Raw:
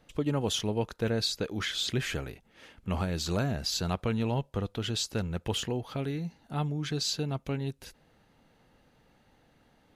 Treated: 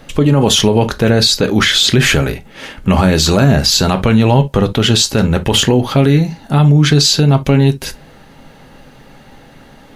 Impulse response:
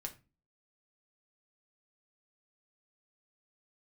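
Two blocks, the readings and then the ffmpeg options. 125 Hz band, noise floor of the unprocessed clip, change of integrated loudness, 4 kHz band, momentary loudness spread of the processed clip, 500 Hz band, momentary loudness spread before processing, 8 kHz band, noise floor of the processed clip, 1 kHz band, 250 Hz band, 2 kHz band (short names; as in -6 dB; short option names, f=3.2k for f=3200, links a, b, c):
+21.0 dB, -65 dBFS, +20.0 dB, +20.0 dB, 6 LU, +19.0 dB, 7 LU, +20.0 dB, -41 dBFS, +19.5 dB, +20.5 dB, +21.0 dB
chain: -filter_complex "[0:a]asplit=2[a][b];[1:a]atrim=start_sample=2205,atrim=end_sample=3087[c];[b][c]afir=irnorm=-1:irlink=0,volume=6dB[d];[a][d]amix=inputs=2:normalize=0,alimiter=level_in=16.5dB:limit=-1dB:release=50:level=0:latency=1,volume=-1dB"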